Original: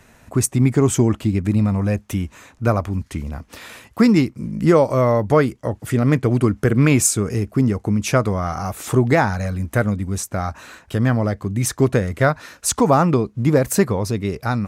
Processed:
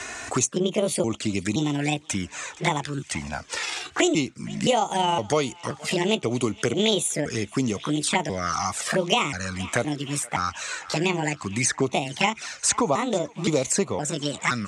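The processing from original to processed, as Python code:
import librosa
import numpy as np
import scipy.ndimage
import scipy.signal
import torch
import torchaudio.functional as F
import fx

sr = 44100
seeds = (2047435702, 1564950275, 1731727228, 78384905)

p1 = fx.pitch_trill(x, sr, semitones=6.5, every_ms=518)
p2 = fx.peak_eq(p1, sr, hz=3400.0, db=-2.5, octaves=0.98)
p3 = fx.env_flanger(p2, sr, rest_ms=2.9, full_db=-14.5)
p4 = scipy.signal.sosfilt(scipy.signal.butter(6, 8200.0, 'lowpass', fs=sr, output='sos'), p3)
p5 = fx.tilt_eq(p4, sr, slope=4.0)
p6 = p5 + fx.echo_banded(p5, sr, ms=470, feedback_pct=79, hz=2100.0, wet_db=-23, dry=0)
y = fx.band_squash(p6, sr, depth_pct=70)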